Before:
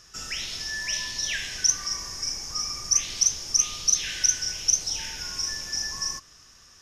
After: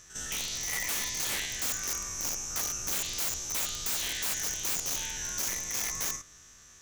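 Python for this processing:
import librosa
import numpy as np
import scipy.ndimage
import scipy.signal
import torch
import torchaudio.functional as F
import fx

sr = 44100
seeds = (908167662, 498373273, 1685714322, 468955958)

y = fx.spec_steps(x, sr, hold_ms=50)
y = (np.mod(10.0 ** (25.5 / 20.0) * y + 1.0, 2.0) - 1.0) / 10.0 ** (25.5 / 20.0)
y = fx.formant_shift(y, sr, semitones=2)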